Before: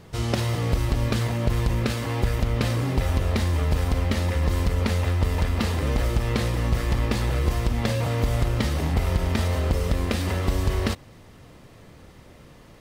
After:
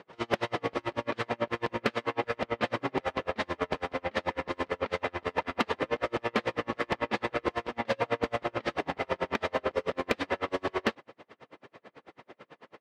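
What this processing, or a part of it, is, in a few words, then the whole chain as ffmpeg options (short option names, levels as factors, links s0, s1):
helicopter radio: -af "highpass=390,lowpass=2600,aeval=exprs='val(0)*pow(10,-38*(0.5-0.5*cos(2*PI*9.1*n/s))/20)':c=same,asoftclip=type=hard:threshold=0.0562,volume=2.51"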